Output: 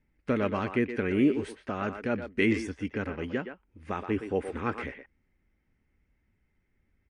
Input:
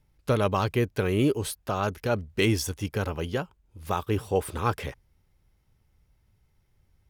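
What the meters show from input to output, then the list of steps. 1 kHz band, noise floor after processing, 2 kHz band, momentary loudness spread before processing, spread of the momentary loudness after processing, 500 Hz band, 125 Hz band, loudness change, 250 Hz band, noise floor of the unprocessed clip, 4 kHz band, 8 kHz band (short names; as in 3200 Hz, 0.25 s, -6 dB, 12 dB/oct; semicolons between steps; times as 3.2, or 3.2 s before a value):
-6.0 dB, -74 dBFS, 0.0 dB, 8 LU, 12 LU, -3.5 dB, -9.0 dB, -2.5 dB, +1.0 dB, -69 dBFS, -9.5 dB, -16.0 dB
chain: graphic EQ 125/250/1000/2000/4000/8000 Hz -6/+11/-4/+12/-9/-10 dB; speakerphone echo 0.12 s, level -8 dB; gain -6 dB; MP3 48 kbps 22050 Hz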